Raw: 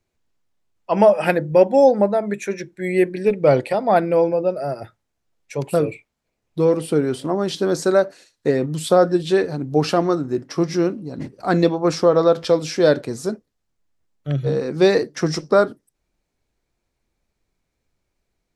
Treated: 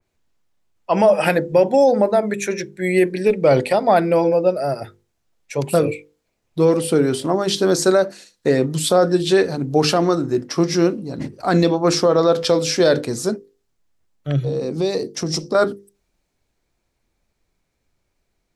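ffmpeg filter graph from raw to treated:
-filter_complex "[0:a]asettb=1/sr,asplit=3[a][b][c];[a]atrim=end=14.444[d];[b]atrim=start=14.44:end=15.55,asetpts=PTS-STARTPTS,afade=t=in:d=0.004:c=qsin,afade=t=out:st=1.106:d=0.004:c=qsin,equalizer=f=1.6k:t=o:w=1:g=-13,acompressor=threshold=-22dB:ratio=3:attack=3.2:release=140:knee=1:detection=peak[e];[c]atrim=start=15.546[f];[d][e]acrossfade=d=0.004:c1=hsin:c2=qsin[g];[g][f]acrossfade=d=0.004:c1=qsin:c2=hsin,bandreject=f=50:t=h:w=6,bandreject=f=100:t=h:w=6,bandreject=f=150:t=h:w=6,bandreject=f=200:t=h:w=6,bandreject=f=250:t=h:w=6,bandreject=f=300:t=h:w=6,bandreject=f=350:t=h:w=6,bandreject=f=400:t=h:w=6,bandreject=f=450:t=h:w=6,bandreject=f=500:t=h:w=6,alimiter=limit=-9dB:level=0:latency=1:release=32,adynamicequalizer=threshold=0.0141:dfrequency=2900:dqfactor=0.7:tfrequency=2900:tqfactor=0.7:attack=5:release=100:ratio=0.375:range=2.5:mode=boostabove:tftype=highshelf,volume=3.5dB"

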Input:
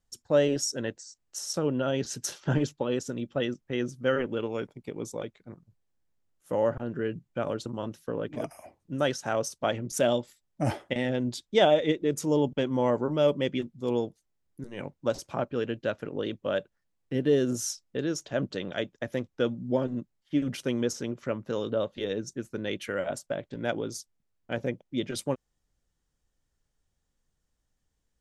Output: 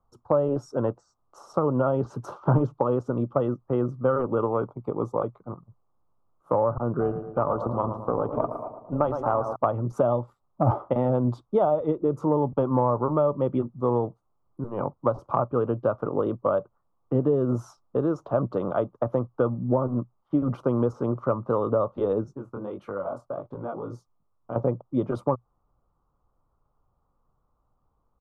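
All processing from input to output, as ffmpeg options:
-filter_complex "[0:a]asettb=1/sr,asplit=3[a][b][c];[a]atrim=end=7.004[d];[b]atrim=start=7:end=9.56,asetpts=PTS-STARTPTS,afade=t=in:d=0.004:c=qsin,afade=t=out:st=2.556:d=0.004:c=qsin,asplit=2[e][f];[f]adelay=111,lowpass=f=2.3k:p=1,volume=-10dB,asplit=2[g][h];[h]adelay=111,lowpass=f=2.3k:p=1,volume=0.55,asplit=2[i][j];[j]adelay=111,lowpass=f=2.3k:p=1,volume=0.55,asplit=2[k][l];[l]adelay=111,lowpass=f=2.3k:p=1,volume=0.55,asplit=2[m][n];[n]adelay=111,lowpass=f=2.3k:p=1,volume=0.55,asplit=2[o][p];[p]adelay=111,lowpass=f=2.3k:p=1,volume=0.55[q];[e][g][i][k][m][o][q]amix=inputs=7:normalize=0,atrim=end_sample=112896,tremolo=f=300:d=0.462[r];[c]atrim=start=9.556[s];[d][r]acrossfade=d=0.004:c1=hsin:c2=qsin[t];[t][s]acrossfade=d=0.004:c1=qsin:c2=hsin,asettb=1/sr,asplit=3[u][v][w];[u]atrim=end=22.244[x];[v]atrim=start=22.24:end=24.56,asetpts=PTS-STARTPTS,afade=t=in:d=0.004:c=qsin,afade=t=out:st=2.316:d=0.004:c=qsin,acompressor=threshold=-34dB:ratio=6:attack=3.2:release=140:knee=1:detection=peak,flanger=delay=19.5:depth=5.4:speed=1.5[y];[w]atrim=start=24.556[z];[x][y]acrossfade=d=0.004:c1=hsin:c2=qsin[aa];[aa][z]acrossfade=d=0.004:c1=qsin:c2=hsin,firequalizer=gain_entry='entry(240,0);entry(1200,14);entry(1700,-20);entry(6600,-29)':delay=0.05:min_phase=1,acrossover=split=130[ab][ac];[ac]acompressor=threshold=-26dB:ratio=6[ad];[ab][ad]amix=inputs=2:normalize=0,equalizer=f=120:w=5.7:g=5.5,volume=6dB"

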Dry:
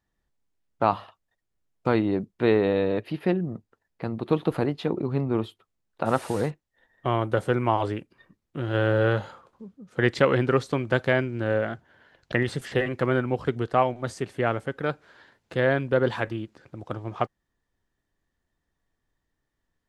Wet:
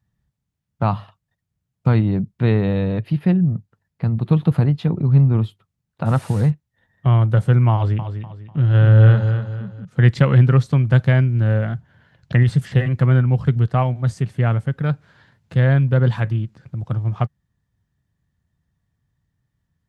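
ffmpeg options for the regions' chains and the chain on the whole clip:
-filter_complex "[0:a]asettb=1/sr,asplit=3[a][b][c];[a]atrim=end=7.744[d];[b]atrim=start=7.74:end=9.85,asetpts=PTS-STARTPTS,afade=t=in:d=0.004:c=qsin,afade=t=out:st=2.106:d=0.004:c=qsin,lowpass=6.4k,aecho=1:1:247|494|741|988:0.376|0.132|0.046|0.0161,atrim=end_sample=93051[e];[c]atrim=start=9.846[f];[d][e]acrossfade=d=0.004:c1=hsin:c2=qsin[g];[g][f]acrossfade=d=0.004:c1=qsin:c2=hsin,highpass=74,lowshelf=f=220:t=q:w=1.5:g=14"

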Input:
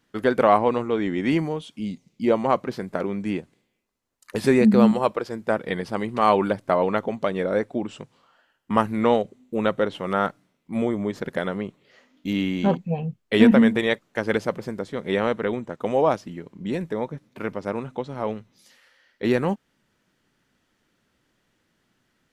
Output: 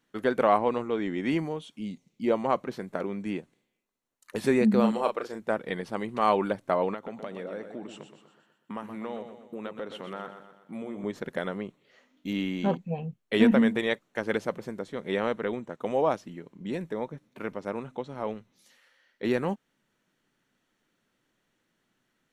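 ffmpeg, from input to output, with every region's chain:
-filter_complex "[0:a]asettb=1/sr,asplit=3[a][b][c];[a]atrim=end=4.804[d];[b]atrim=start=4.8:end=5.4,asetpts=PTS-STARTPTS,afade=t=in:d=0.004:c=qsin,afade=t=out:st=0.596:d=0.004:c=qsin,equalizer=f=77:w=0.61:g=-11,asplit=2[e][f];[f]adelay=36,volume=-6dB[g];[e][g]amix=inputs=2:normalize=0,atrim=end_sample=26460[h];[c]atrim=start=5.396[i];[d][h]acrossfade=d=0.004:c1=hsin:c2=qsin[j];[j][i]acrossfade=d=0.004:c1=qsin:c2=hsin,asettb=1/sr,asplit=3[k][l][m];[k]atrim=end=6.944[n];[l]atrim=start=6.94:end=11.04,asetpts=PTS-STARTPTS,afade=t=in:d=0.004:c=qsin,afade=t=out:st=4.096:d=0.004:c=qsin,highpass=120,acompressor=threshold=-30dB:ratio=3:attack=3.2:release=140:knee=1:detection=peak,aecho=1:1:123|246|369|492|615|738:0.355|0.174|0.0852|0.0417|0.0205|0.01,atrim=end_sample=180810[o];[m]atrim=start=11.036[p];[n][o]acrossfade=d=0.004:c1=hsin:c2=qsin[q];[q][p]acrossfade=d=0.004:c1=qsin:c2=hsin,equalizer=f=66:w=1.5:g=-14,bandreject=f=4.9k:w=11,volume=-5dB"

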